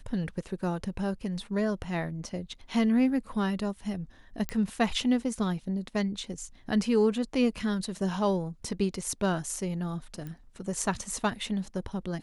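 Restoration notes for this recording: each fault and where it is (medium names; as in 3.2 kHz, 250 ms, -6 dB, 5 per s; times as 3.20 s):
4.49 s: pop -16 dBFS
10.27 s: pop -27 dBFS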